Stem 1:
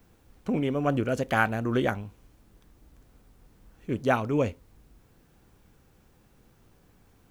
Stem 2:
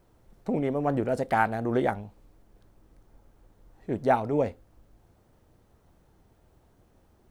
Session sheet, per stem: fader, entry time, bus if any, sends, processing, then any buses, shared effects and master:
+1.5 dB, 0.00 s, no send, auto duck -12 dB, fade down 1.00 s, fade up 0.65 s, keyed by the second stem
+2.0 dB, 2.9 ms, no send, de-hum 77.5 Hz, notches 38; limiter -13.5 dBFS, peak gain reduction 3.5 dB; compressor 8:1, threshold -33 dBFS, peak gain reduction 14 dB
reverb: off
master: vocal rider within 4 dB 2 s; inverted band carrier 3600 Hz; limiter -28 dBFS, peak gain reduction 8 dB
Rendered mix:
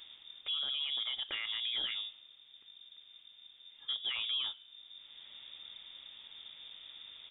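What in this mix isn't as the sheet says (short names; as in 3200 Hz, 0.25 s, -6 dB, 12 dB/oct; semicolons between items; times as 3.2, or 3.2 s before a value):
stem 1 +1.5 dB -> +8.5 dB; stem 2 +2.0 dB -> -6.5 dB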